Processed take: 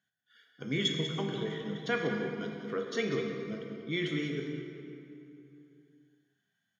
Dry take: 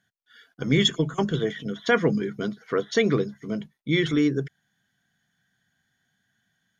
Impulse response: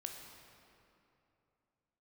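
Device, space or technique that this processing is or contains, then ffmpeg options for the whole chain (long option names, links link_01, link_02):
PA in a hall: -filter_complex "[0:a]highpass=120,equalizer=frequency=2700:width_type=o:width=0.66:gain=4.5,aecho=1:1:192:0.299[link_01];[1:a]atrim=start_sample=2205[link_02];[link_01][link_02]afir=irnorm=-1:irlink=0,volume=-7.5dB"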